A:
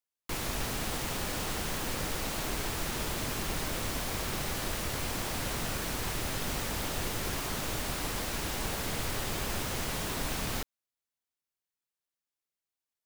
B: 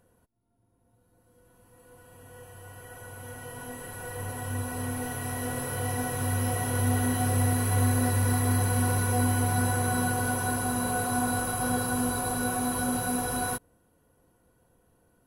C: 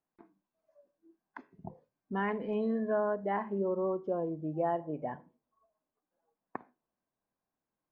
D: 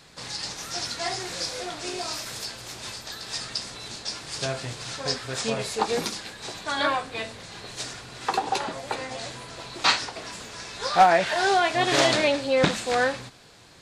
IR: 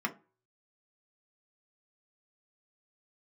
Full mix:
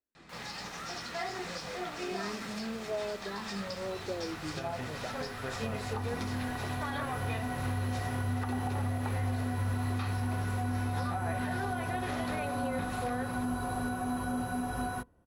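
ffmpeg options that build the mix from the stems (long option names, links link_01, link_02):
-filter_complex "[0:a]highpass=1000,volume=-8.5dB[link_01];[1:a]bandreject=frequency=490:width=12,adelay=1450,volume=-2dB,asplit=2[link_02][link_03];[link_03]volume=-23.5dB[link_04];[2:a]asplit=2[link_05][link_06];[link_06]afreqshift=-0.96[link_07];[link_05][link_07]amix=inputs=2:normalize=1,volume=-3dB[link_08];[3:a]acompressor=threshold=-28dB:ratio=6,adelay=150,volume=-5dB,asplit=2[link_09][link_10];[link_10]volume=-7dB[link_11];[4:a]atrim=start_sample=2205[link_12];[link_04][link_11]amix=inputs=2:normalize=0[link_13];[link_13][link_12]afir=irnorm=-1:irlink=0[link_14];[link_01][link_02][link_08][link_09][link_14]amix=inputs=5:normalize=0,lowpass=frequency=2100:poles=1,equalizer=frequency=61:width_type=o:width=0.77:gain=6,alimiter=level_in=0.5dB:limit=-24dB:level=0:latency=1:release=204,volume=-0.5dB"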